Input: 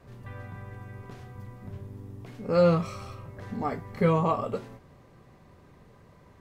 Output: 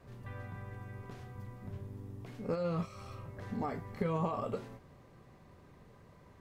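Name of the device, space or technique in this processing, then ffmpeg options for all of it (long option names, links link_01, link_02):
de-esser from a sidechain: -filter_complex "[0:a]asplit=2[link_01][link_02];[link_02]highpass=5400,apad=whole_len=282584[link_03];[link_01][link_03]sidechaincompress=threshold=-59dB:ratio=12:attack=3.9:release=31,volume=-3.5dB"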